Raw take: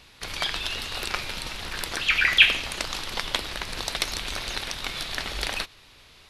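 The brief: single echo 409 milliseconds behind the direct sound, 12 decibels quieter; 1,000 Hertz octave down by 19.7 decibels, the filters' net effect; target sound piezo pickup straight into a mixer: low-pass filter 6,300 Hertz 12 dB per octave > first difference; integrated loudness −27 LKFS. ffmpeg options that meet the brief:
ffmpeg -i in.wav -af "lowpass=6300,aderivative,equalizer=frequency=1000:width_type=o:gain=-5,aecho=1:1:409:0.251,volume=6.5dB" out.wav

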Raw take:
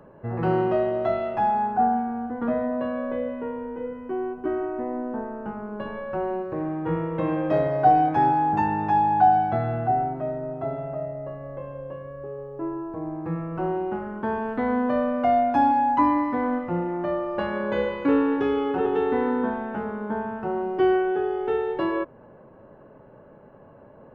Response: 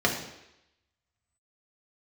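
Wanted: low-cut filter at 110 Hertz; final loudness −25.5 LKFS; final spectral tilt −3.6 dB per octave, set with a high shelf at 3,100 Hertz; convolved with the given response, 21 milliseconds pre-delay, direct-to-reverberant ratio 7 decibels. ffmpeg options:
-filter_complex "[0:a]highpass=110,highshelf=frequency=3100:gain=-7,asplit=2[link_01][link_02];[1:a]atrim=start_sample=2205,adelay=21[link_03];[link_02][link_03]afir=irnorm=-1:irlink=0,volume=-21dB[link_04];[link_01][link_04]amix=inputs=2:normalize=0,volume=-1.5dB"

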